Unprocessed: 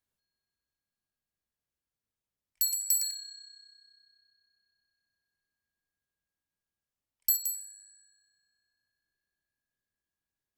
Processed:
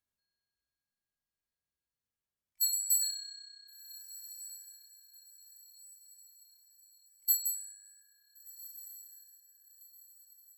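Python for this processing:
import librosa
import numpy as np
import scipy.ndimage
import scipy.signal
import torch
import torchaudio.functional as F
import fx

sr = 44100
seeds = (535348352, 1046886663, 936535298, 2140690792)

y = fx.echo_diffused(x, sr, ms=1452, feedback_pct=44, wet_db=-16.0)
y = fx.hpss(y, sr, part='percussive', gain_db=-15)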